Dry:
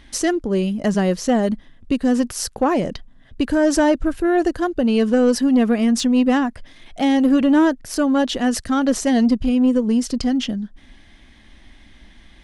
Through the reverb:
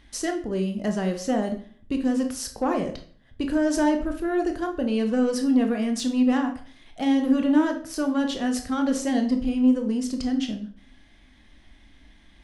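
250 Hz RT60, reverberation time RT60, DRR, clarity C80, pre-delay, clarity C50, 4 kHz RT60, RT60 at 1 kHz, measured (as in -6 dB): 0.55 s, 0.50 s, 4.5 dB, 14.5 dB, 18 ms, 10.0 dB, 0.40 s, 0.45 s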